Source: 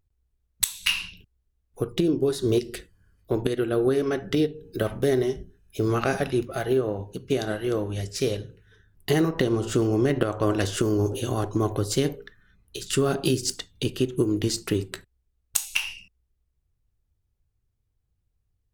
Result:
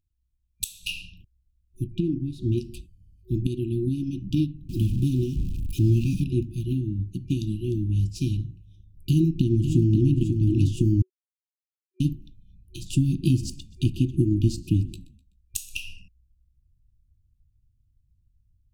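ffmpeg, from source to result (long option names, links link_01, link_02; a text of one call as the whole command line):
ffmpeg -i in.wav -filter_complex "[0:a]asettb=1/sr,asplit=3[link_01][link_02][link_03];[link_01]atrim=end=1.864[link_04];[link_02]atrim=start=1.86:end=2.58,asetpts=PTS-STARTPTS,afade=type=in:duration=0.004:curve=qsin,afade=type=out:start_time=0.716:duration=0.004:curve=qsin,bass=frequency=250:gain=-1,treble=frequency=4000:gain=-14[link_05];[link_03]atrim=start=2.576[link_06];[link_04][link_05]acrossfade=duration=0.004:curve1=hsin:curve2=qsin[link_07];[link_07][link_06]acrossfade=duration=0.004:curve1=qsin:curve2=hsin,asettb=1/sr,asplit=3[link_08][link_09][link_10];[link_08]atrim=end=4.694[link_11];[link_09]atrim=start=4.69:end=6.24,asetpts=PTS-STARTPTS,afade=type=in:duration=0.004:curve=qsin,afade=type=out:start_time=1.546:duration=0.004:curve=qsin,aeval=exprs='val(0)+0.5*0.0316*sgn(val(0))':channel_layout=same[link_12];[link_10]atrim=start=6.236[link_13];[link_11][link_12]acrossfade=duration=0.004:curve1=hsin:curve2=qsin[link_14];[link_14][link_13]acrossfade=duration=0.004:curve1=qsin:curve2=hsin,asplit=2[link_15][link_16];[link_16]afade=type=in:start_time=9.09:duration=0.01,afade=type=out:start_time=10.17:duration=0.01,aecho=0:1:540|1080|1620|2160:0.446684|0.156339|0.0547187|0.0191516[link_17];[link_15][link_17]amix=inputs=2:normalize=0,asplit=3[link_18][link_19][link_20];[link_18]afade=type=out:start_time=13.22:duration=0.02[link_21];[link_19]asplit=4[link_22][link_23][link_24][link_25];[link_23]adelay=126,afreqshift=-60,volume=-21.5dB[link_26];[link_24]adelay=252,afreqshift=-120,volume=-29.9dB[link_27];[link_25]adelay=378,afreqshift=-180,volume=-38.3dB[link_28];[link_22][link_26][link_27][link_28]amix=inputs=4:normalize=0,afade=type=in:start_time=13.22:duration=0.02,afade=type=out:start_time=15.72:duration=0.02[link_29];[link_20]afade=type=in:start_time=15.72:duration=0.02[link_30];[link_21][link_29][link_30]amix=inputs=3:normalize=0,asplit=3[link_31][link_32][link_33];[link_31]atrim=end=11.02,asetpts=PTS-STARTPTS,afade=type=out:start_time=11.016:duration=0.004:curve=hsin[link_34];[link_32]atrim=start=11.02:end=12,asetpts=PTS-STARTPTS,volume=0[link_35];[link_33]atrim=start=12,asetpts=PTS-STARTPTS,afade=type=in:duration=0.004:curve=hsin[link_36];[link_34][link_35][link_36]concat=n=3:v=0:a=1,asubboost=boost=6.5:cutoff=240,afftfilt=real='re*(1-between(b*sr/4096,370,2400))':imag='im*(1-between(b*sr/4096,370,2400))':win_size=4096:overlap=0.75,adynamicequalizer=threshold=0.00794:dfrequency=2700:dqfactor=0.7:tfrequency=2700:tqfactor=0.7:attack=5:release=100:ratio=0.375:range=2.5:mode=cutabove:tftype=highshelf,volume=-6.5dB" out.wav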